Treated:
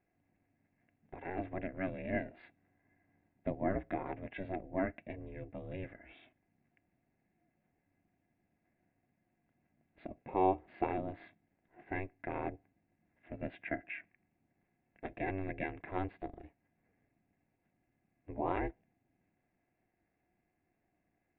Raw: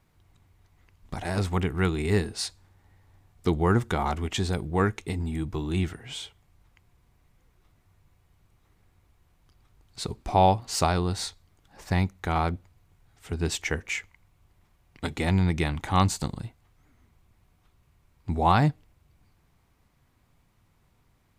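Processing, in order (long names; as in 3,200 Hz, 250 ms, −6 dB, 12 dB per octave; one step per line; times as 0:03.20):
formant resonators in series e
ring modulation 190 Hz
level +5 dB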